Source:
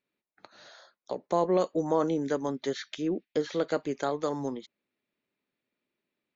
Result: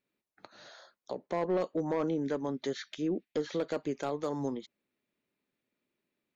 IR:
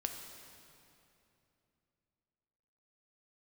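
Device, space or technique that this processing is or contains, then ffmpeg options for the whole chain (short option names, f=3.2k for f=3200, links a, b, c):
clipper into limiter: -filter_complex "[0:a]asoftclip=type=hard:threshold=-20dB,alimiter=level_in=0.5dB:limit=-24dB:level=0:latency=1:release=230,volume=-0.5dB,asettb=1/sr,asplit=3[a][b][c];[a]atrim=end=1.134[d];[b]atrim=start=1.13:end=2.56,asetpts=PTS-STARTPTS,afade=t=in:d=0.004:c=qsin,afade=t=out:st=1.426:d=0.004:c=qsin,lowpass=5.1k[e];[c]atrim=start=2.556[f];[d][e]acrossfade=d=0.004:c1=hsin:c2=qsin[g];[g][f]acrossfade=d=0.004:c1=qsin:c2=hsin,lowshelf=f=440:g=3.5,volume=-1dB"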